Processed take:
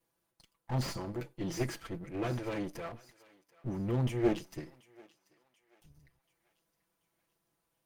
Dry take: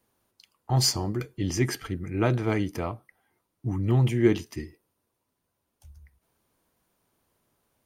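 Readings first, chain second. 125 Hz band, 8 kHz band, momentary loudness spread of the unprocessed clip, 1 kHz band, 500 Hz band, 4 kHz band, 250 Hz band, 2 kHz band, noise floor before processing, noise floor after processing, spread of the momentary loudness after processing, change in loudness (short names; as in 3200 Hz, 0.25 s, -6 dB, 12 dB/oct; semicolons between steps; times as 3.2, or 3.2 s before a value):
-10.5 dB, -16.0 dB, 14 LU, -7.5 dB, -7.5 dB, -15.0 dB, -8.0 dB, -9.0 dB, -80 dBFS, -82 dBFS, 14 LU, -9.5 dB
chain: minimum comb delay 6 ms; thinning echo 0.735 s, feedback 49%, high-pass 820 Hz, level -20.5 dB; slew limiter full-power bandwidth 100 Hz; gain -6.5 dB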